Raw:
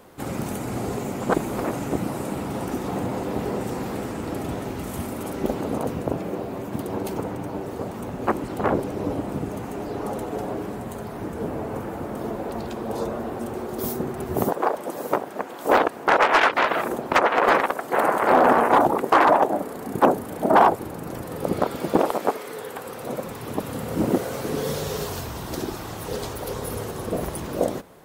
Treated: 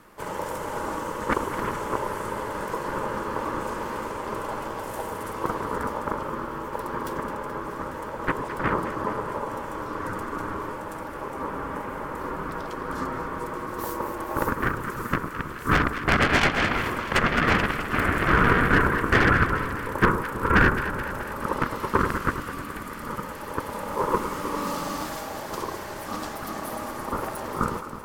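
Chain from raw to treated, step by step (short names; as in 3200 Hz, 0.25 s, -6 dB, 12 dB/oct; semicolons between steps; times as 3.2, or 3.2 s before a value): self-modulated delay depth 0.11 ms; notch 3100 Hz, Q 9.8; ring modulator 720 Hz; echo with dull and thin repeats by turns 0.107 s, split 1200 Hz, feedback 80%, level -8.5 dB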